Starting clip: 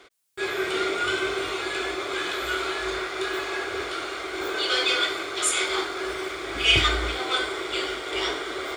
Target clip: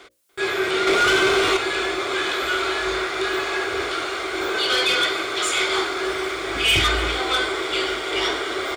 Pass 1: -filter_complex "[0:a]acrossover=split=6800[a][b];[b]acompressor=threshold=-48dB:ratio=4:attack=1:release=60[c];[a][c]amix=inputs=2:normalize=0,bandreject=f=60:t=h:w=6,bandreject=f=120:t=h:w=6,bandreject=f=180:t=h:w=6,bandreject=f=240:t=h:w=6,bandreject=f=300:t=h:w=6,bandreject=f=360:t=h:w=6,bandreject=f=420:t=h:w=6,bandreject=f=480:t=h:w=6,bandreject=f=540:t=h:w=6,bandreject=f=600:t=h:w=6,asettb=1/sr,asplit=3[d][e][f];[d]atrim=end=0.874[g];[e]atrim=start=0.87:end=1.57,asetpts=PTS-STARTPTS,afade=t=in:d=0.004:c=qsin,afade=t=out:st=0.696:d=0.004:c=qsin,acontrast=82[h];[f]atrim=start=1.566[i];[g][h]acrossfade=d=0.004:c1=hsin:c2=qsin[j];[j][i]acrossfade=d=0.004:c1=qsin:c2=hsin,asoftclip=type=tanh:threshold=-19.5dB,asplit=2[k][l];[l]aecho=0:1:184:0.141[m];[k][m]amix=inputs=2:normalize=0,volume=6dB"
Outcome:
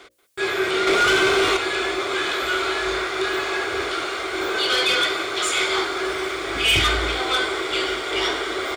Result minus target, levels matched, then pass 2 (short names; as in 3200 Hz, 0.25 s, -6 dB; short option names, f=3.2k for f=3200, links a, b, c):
echo 0.107 s early
-filter_complex "[0:a]acrossover=split=6800[a][b];[b]acompressor=threshold=-48dB:ratio=4:attack=1:release=60[c];[a][c]amix=inputs=2:normalize=0,bandreject=f=60:t=h:w=6,bandreject=f=120:t=h:w=6,bandreject=f=180:t=h:w=6,bandreject=f=240:t=h:w=6,bandreject=f=300:t=h:w=6,bandreject=f=360:t=h:w=6,bandreject=f=420:t=h:w=6,bandreject=f=480:t=h:w=6,bandreject=f=540:t=h:w=6,bandreject=f=600:t=h:w=6,asettb=1/sr,asplit=3[d][e][f];[d]atrim=end=0.874[g];[e]atrim=start=0.87:end=1.57,asetpts=PTS-STARTPTS,afade=t=in:d=0.004:c=qsin,afade=t=out:st=0.696:d=0.004:c=qsin,acontrast=82[h];[f]atrim=start=1.566[i];[g][h]acrossfade=d=0.004:c1=hsin:c2=qsin[j];[j][i]acrossfade=d=0.004:c1=qsin:c2=hsin,asoftclip=type=tanh:threshold=-19.5dB,asplit=2[k][l];[l]aecho=0:1:291:0.141[m];[k][m]amix=inputs=2:normalize=0,volume=6dB"